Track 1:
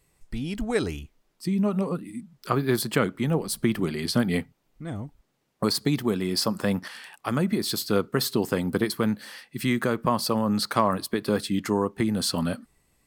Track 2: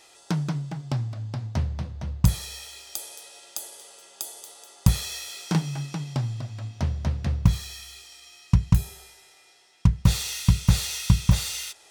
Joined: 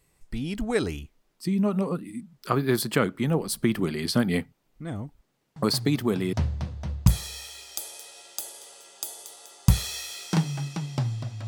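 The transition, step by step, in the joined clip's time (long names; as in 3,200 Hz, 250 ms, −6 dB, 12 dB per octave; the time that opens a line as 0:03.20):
track 1
0:05.56: mix in track 2 from 0:00.74 0.77 s −7.5 dB
0:06.33: continue with track 2 from 0:01.51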